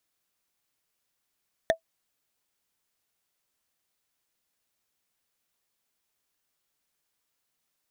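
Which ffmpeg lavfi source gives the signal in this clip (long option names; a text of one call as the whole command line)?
ffmpeg -f lavfi -i "aevalsrc='0.2*pow(10,-3*t/0.1)*sin(2*PI*654*t)+0.126*pow(10,-3*t/0.03)*sin(2*PI*1803.1*t)+0.0794*pow(10,-3*t/0.013)*sin(2*PI*3534.2*t)+0.0501*pow(10,-3*t/0.007)*sin(2*PI*5842.2*t)+0.0316*pow(10,-3*t/0.004)*sin(2*PI*8724.4*t)':duration=0.45:sample_rate=44100" out.wav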